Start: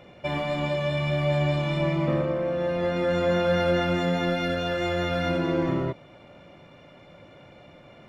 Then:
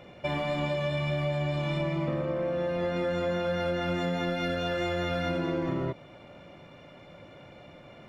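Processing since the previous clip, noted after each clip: compressor, threshold -26 dBFS, peak gain reduction 7.5 dB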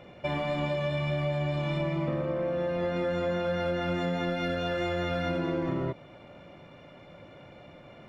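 high shelf 4500 Hz -5 dB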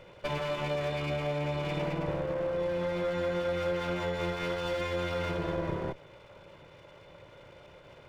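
minimum comb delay 2 ms; gain -1 dB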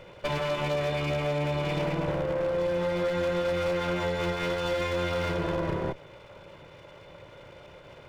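wavefolder -26 dBFS; gain +4 dB

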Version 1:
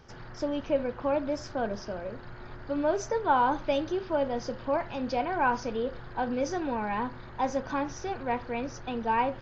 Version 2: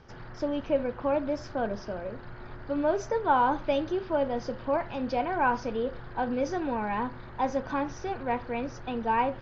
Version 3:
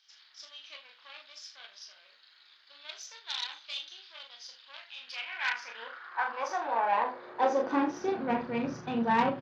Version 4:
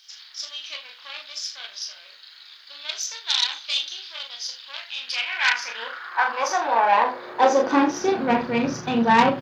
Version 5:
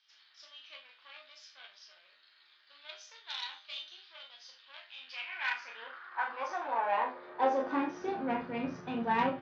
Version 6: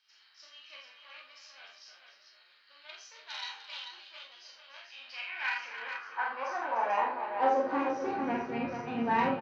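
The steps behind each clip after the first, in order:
air absorption 100 m; gain +1 dB
early reflections 26 ms -6.5 dB, 39 ms -5.5 dB, 78 ms -11.5 dB; added harmonics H 6 -18 dB, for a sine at -10.5 dBFS; high-pass sweep 3700 Hz -> 160 Hz, 4.84–8.54; gain -3 dB
high shelf 4300 Hz +12 dB; gain +9 dB
LPF 2800 Hz 12 dB/oct; resonator 88 Hz, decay 0.23 s, harmonics all, mix 80%; gain -6 dB
notch 3500 Hz, Q 7.4; tapped delay 48/299/441 ms -3.5/-11/-6.5 dB

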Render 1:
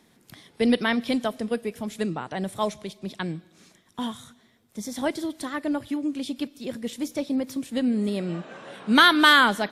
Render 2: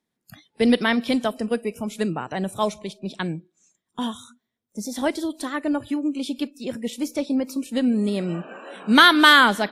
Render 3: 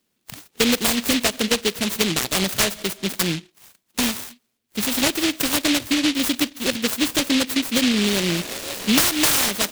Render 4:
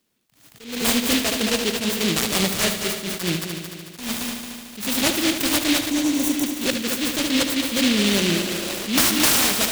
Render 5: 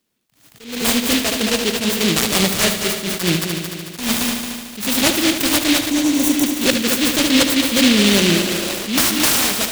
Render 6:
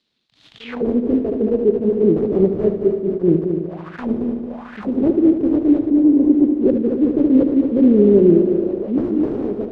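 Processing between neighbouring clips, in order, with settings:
spectral noise reduction 24 dB; gain +3 dB
tone controls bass -6 dB, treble +5 dB; compressor 6:1, threshold -25 dBFS, peak gain reduction 16.5 dB; noise-modulated delay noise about 3000 Hz, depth 0.32 ms; gain +9 dB
spectral repair 5.86–6.41, 1100–5500 Hz before; multi-head echo 74 ms, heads first and third, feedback 64%, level -10 dB; attack slew limiter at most 110 dB/s
AGC gain up to 9.5 dB; gain -1 dB
envelope low-pass 400–4000 Hz down, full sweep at -20 dBFS; gain -1.5 dB

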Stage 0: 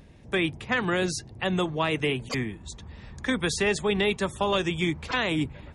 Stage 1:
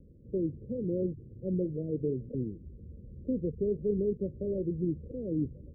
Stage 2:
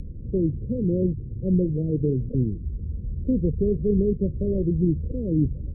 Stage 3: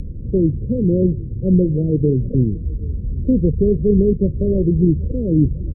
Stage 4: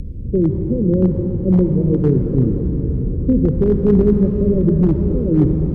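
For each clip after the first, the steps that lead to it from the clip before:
steep low-pass 550 Hz 96 dB/oct; gain -3.5 dB
tilt -4.5 dB/oct; upward compressor, threshold -28 dBFS
echo 0.778 s -23 dB; gain +7 dB
overloaded stage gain 7.5 dB; reverb RT60 5.7 s, pre-delay 45 ms, DRR 4.5 dB

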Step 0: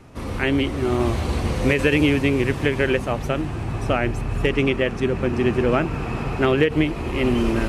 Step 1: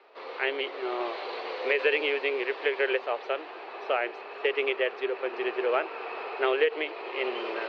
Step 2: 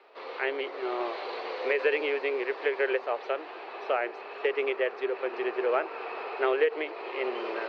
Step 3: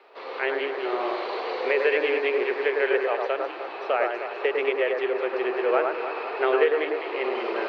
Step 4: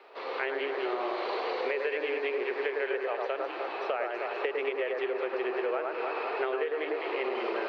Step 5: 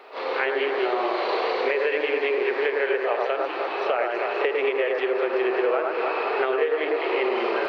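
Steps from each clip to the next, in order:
Chebyshev band-pass 410–4400 Hz, order 4; gain -4 dB
dynamic EQ 3100 Hz, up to -7 dB, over -44 dBFS, Q 1.6
echo with dull and thin repeats by turns 0.102 s, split 1800 Hz, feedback 66%, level -3 dB; gain +3 dB
compressor, threshold -28 dBFS, peak gain reduction 12 dB
reverse echo 34 ms -7.5 dB; gain +7 dB

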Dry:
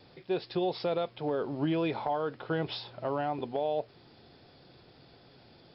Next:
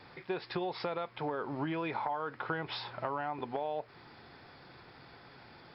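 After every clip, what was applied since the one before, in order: band shelf 1400 Hz +9.5 dB; compressor 6:1, threshold -32 dBFS, peak gain reduction 10 dB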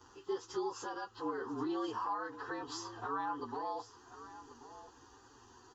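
inharmonic rescaling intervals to 111%; fixed phaser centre 600 Hz, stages 6; echo 1.082 s -14.5 dB; gain +2 dB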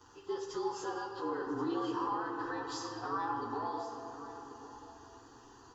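reverb RT60 3.3 s, pre-delay 7 ms, DRR 2 dB

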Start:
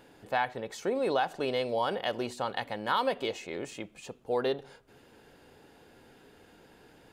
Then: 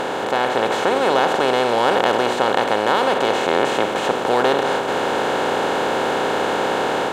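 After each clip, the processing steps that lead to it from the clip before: per-bin compression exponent 0.2; AGC gain up to 4 dB; gain +1.5 dB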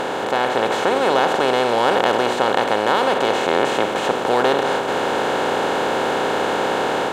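nothing audible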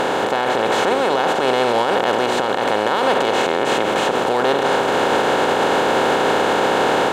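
maximiser +11 dB; gain -6.5 dB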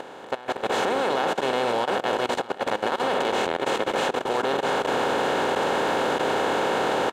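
echo 0.638 s -8.5 dB; level quantiser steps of 18 dB; gain -5.5 dB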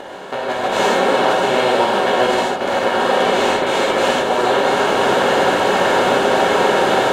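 non-linear reverb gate 0.18 s flat, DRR -7 dB; gain +1 dB

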